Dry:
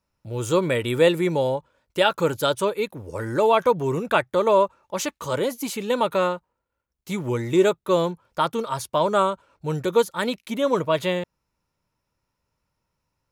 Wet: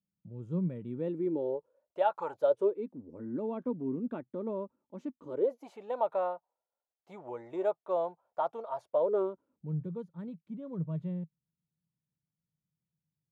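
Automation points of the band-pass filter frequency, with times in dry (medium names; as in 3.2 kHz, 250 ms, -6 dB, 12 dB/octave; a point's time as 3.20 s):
band-pass filter, Q 5.4
0.84 s 180 Hz
2.24 s 910 Hz
2.89 s 250 Hz
5.19 s 250 Hz
5.66 s 710 Hz
8.78 s 710 Hz
9.81 s 160 Hz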